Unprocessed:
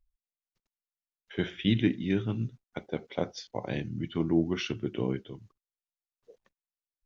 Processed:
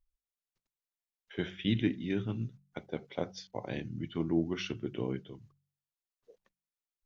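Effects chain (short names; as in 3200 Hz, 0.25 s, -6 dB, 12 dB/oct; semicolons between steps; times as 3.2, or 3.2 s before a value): de-hum 47.28 Hz, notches 4; gain -4 dB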